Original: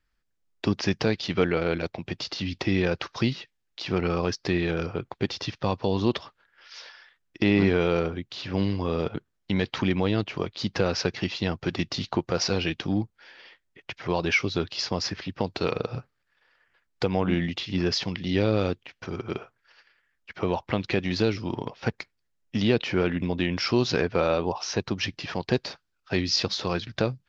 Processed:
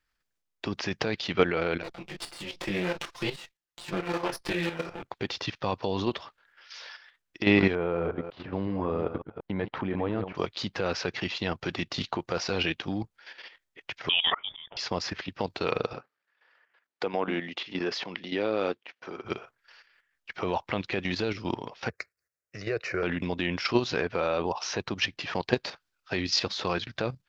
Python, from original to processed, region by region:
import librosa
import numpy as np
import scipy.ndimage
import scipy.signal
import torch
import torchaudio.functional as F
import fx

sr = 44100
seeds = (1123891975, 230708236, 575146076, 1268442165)

y = fx.chain(x, sr, fx.lower_of_two(delay_ms=5.8),
    fx.detune_double(cents=39), at=(1.83, 5.03))
y = fx.chain(y, sr, fx.reverse_delay(ms=184, wet_db=-9),
    fx.lowpass(hz=1300.0, slope=12), at=(7.75, 10.35))
y = fx.chain(y, sr, fx.highpass(hz=51.0, slope=12),
    fx.auto_swell(attack_ms=337.0),
    fx.freq_invert(carrier_hz=3500), at=(14.09, 14.77))
y = fx.chain(y, sr, fx.highpass(hz=270.0, slope=12),
    fx.high_shelf(hz=3900.0, db=-11.5), at=(15.93, 19.25))
y = fx.chain(y, sr, fx.highpass(hz=57.0, slope=24),
    fx.fixed_phaser(hz=890.0, stages=6), at=(21.89, 23.03))
y = fx.dynamic_eq(y, sr, hz=5300.0, q=1.4, threshold_db=-46.0, ratio=4.0, max_db=-6)
y = fx.level_steps(y, sr, step_db=10)
y = fx.low_shelf(y, sr, hz=390.0, db=-8.5)
y = y * librosa.db_to_amplitude(6.0)